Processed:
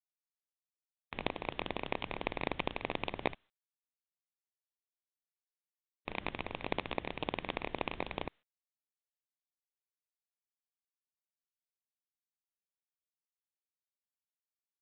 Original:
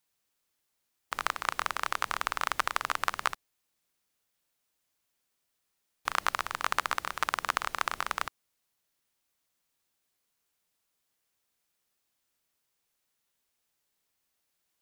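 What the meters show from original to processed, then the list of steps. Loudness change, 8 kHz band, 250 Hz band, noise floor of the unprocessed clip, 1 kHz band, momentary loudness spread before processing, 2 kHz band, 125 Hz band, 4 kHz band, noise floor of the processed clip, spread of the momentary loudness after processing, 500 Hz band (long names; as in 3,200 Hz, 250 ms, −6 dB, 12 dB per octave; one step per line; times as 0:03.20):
−7.5 dB, below −35 dB, +10.0 dB, −80 dBFS, −10.5 dB, 5 LU, −9.0 dB, +7.0 dB, −6.5 dB, below −85 dBFS, 6 LU, +4.5 dB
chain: samples in bit-reversed order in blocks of 32 samples
downward expander −42 dBFS
level +4.5 dB
mu-law 64 kbit/s 8,000 Hz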